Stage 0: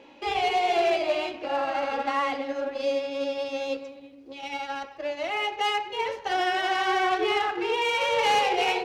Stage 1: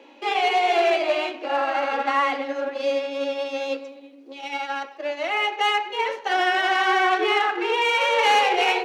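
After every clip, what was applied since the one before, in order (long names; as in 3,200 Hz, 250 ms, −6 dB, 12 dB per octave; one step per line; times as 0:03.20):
Butterworth high-pass 230 Hz 36 dB per octave
notch filter 5,000 Hz, Q 19
dynamic equaliser 1,600 Hz, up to +5 dB, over −38 dBFS, Q 0.84
level +2 dB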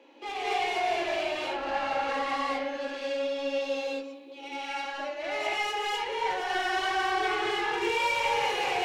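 brickwall limiter −15 dBFS, peak gain reduction 6 dB
soft clipping −23 dBFS, distortion −12 dB
reverb whose tail is shaped and stops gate 280 ms rising, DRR −6.5 dB
level −8.5 dB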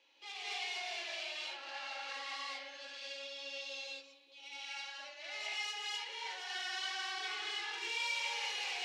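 resonant band-pass 4,800 Hz, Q 1.2
level −1 dB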